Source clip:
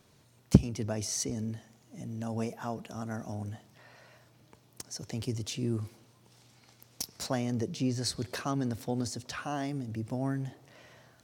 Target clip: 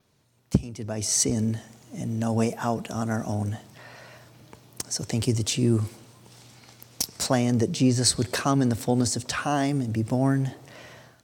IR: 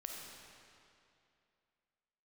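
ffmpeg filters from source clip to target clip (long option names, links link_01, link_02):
-af "dynaudnorm=framelen=160:gausssize=5:maxgain=14dB,adynamicequalizer=threshold=0.00178:dfrequency=8100:dqfactor=4.2:tfrequency=8100:tqfactor=4.2:attack=5:release=100:ratio=0.375:range=4:mode=boostabove:tftype=bell,volume=-4dB"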